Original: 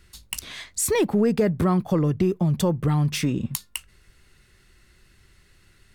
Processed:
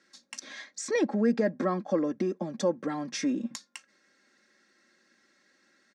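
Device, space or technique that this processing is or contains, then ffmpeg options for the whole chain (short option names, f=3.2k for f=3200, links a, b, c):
television speaker: -filter_complex "[0:a]asettb=1/sr,asplit=3[a][b][c];[a]atrim=end=0.534[d];[b]atrim=start=0.53:end=1.99,asetpts=PTS-STARTPTS,afade=t=in:d=0.004:c=qsin,afade=t=out:st=1.456:d=0.004:c=qsin,lowpass=7.4k[e];[c]atrim=start=1.986[f];[d][e]acrossfade=d=0.004:c1=hsin:c2=qsin[g];[g][f]acrossfade=d=0.004:c1=qsin:c2=hsin,highpass=f=200:w=0.5412,highpass=f=200:w=1.3066,equalizer=f=240:t=q:w=4:g=4,equalizer=f=390:t=q:w=4:g=5,equalizer=f=620:t=q:w=4:g=8,equalizer=f=1.7k:t=q:w=4:g=8,equalizer=f=2.9k:t=q:w=4:g=-7,equalizer=f=5.8k:t=q:w=4:g=6,lowpass=f=7.1k:w=0.5412,lowpass=f=7.1k:w=1.3066,aecho=1:1:3.7:0.66,volume=-8.5dB"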